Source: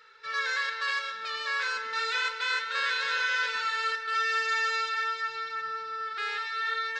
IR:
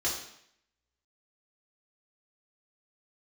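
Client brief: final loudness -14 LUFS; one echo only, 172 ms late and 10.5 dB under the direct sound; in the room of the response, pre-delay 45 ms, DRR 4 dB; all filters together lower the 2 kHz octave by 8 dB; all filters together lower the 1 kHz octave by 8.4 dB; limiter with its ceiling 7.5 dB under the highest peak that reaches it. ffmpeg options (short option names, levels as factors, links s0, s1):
-filter_complex "[0:a]equalizer=f=1000:t=o:g=-9,equalizer=f=2000:t=o:g=-7,alimiter=level_in=1.68:limit=0.0631:level=0:latency=1,volume=0.596,aecho=1:1:172:0.299,asplit=2[s0][s1];[1:a]atrim=start_sample=2205,adelay=45[s2];[s1][s2]afir=irnorm=-1:irlink=0,volume=0.282[s3];[s0][s3]amix=inputs=2:normalize=0,volume=11.2"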